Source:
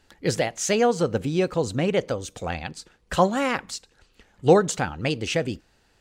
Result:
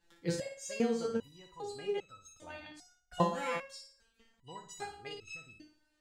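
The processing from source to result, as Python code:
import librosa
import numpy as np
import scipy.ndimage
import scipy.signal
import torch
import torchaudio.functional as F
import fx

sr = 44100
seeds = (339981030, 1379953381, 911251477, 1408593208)

p1 = x + fx.room_flutter(x, sr, wall_m=9.7, rt60_s=0.46, dry=0)
y = fx.resonator_held(p1, sr, hz=2.5, low_hz=170.0, high_hz=1300.0)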